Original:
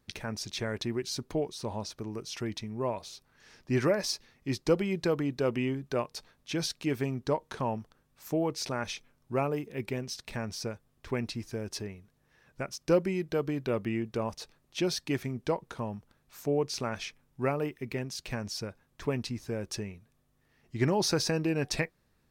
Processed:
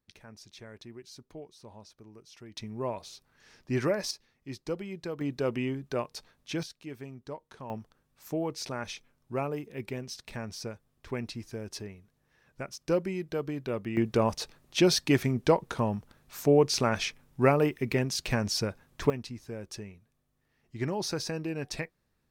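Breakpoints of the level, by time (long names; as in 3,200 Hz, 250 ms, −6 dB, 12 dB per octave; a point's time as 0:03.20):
−14 dB
from 0:02.57 −1.5 dB
from 0:04.11 −8.5 dB
from 0:05.21 −1 dB
from 0:06.63 −11.5 dB
from 0:07.70 −2.5 dB
from 0:13.97 +7 dB
from 0:19.10 −5 dB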